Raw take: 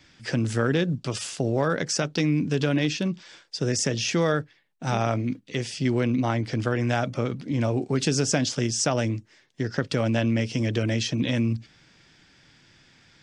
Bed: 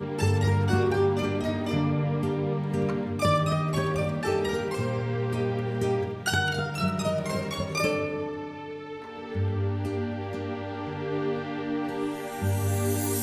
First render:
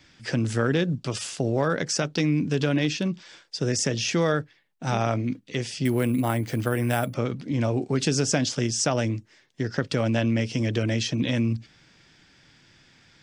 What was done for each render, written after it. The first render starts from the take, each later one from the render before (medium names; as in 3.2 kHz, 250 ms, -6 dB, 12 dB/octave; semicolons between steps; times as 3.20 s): 5.85–7.14 s: careless resampling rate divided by 4×, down filtered, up hold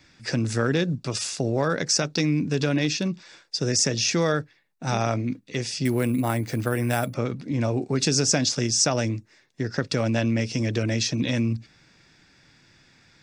band-stop 3.1 kHz, Q 7.2; dynamic bell 5.4 kHz, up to +6 dB, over -44 dBFS, Q 0.97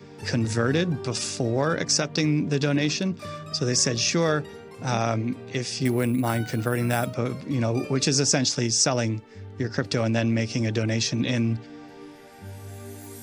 add bed -13.5 dB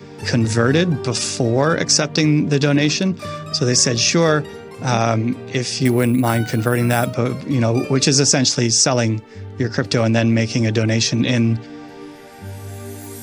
trim +7.5 dB; peak limiter -3 dBFS, peak gain reduction 2.5 dB